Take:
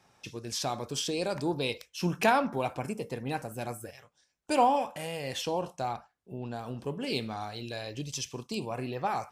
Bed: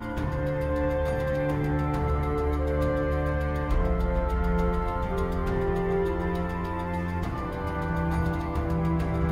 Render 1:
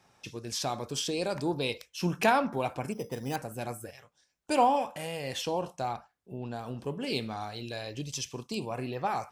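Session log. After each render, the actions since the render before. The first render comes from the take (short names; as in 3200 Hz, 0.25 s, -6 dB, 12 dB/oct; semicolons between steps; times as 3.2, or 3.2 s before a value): 2.92–3.36 careless resampling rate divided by 8×, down filtered, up hold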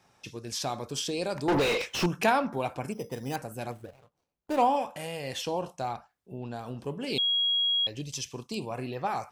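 1.48–2.06 overdrive pedal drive 37 dB, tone 1700 Hz, clips at -16.5 dBFS; 3.71–4.62 median filter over 25 samples; 7.18–7.87 bleep 3300 Hz -23 dBFS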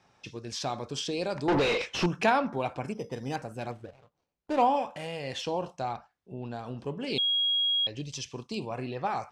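LPF 5800 Hz 12 dB/oct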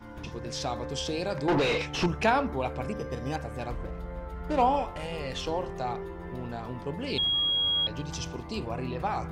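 add bed -12 dB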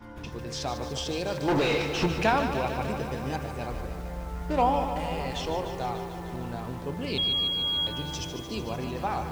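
lo-fi delay 0.149 s, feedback 80%, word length 8-bit, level -9 dB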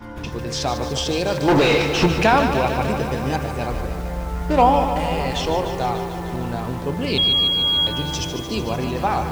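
gain +9 dB; limiter -3 dBFS, peak gain reduction 2.5 dB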